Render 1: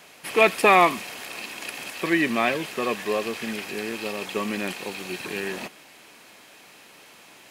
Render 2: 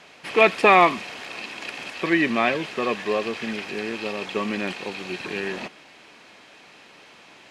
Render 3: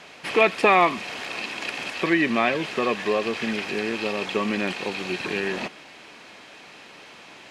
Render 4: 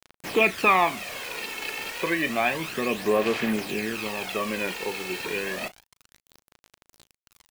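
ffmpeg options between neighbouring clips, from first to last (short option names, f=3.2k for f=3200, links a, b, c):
-af "lowpass=5.1k,volume=1.5dB"
-af "acompressor=threshold=-27dB:ratio=1.5,volume=3.5dB"
-filter_complex "[0:a]acrusher=bits=5:mix=0:aa=0.000001,asplit=2[a][b];[b]adelay=37,volume=-13dB[c];[a][c]amix=inputs=2:normalize=0,aphaser=in_gain=1:out_gain=1:delay=2.3:decay=0.51:speed=0.3:type=sinusoidal,volume=-4dB"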